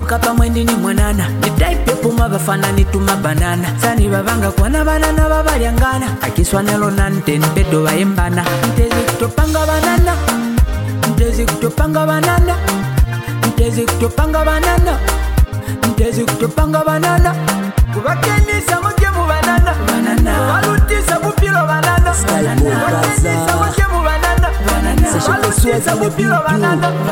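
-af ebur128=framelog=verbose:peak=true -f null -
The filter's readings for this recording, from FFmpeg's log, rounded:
Integrated loudness:
  I:         -14.0 LUFS
  Threshold: -24.0 LUFS
Loudness range:
  LRA:         1.7 LU
  Threshold: -34.0 LUFS
  LRA low:   -14.8 LUFS
  LRA high:  -13.1 LUFS
True peak:
  Peak:       -0.6 dBFS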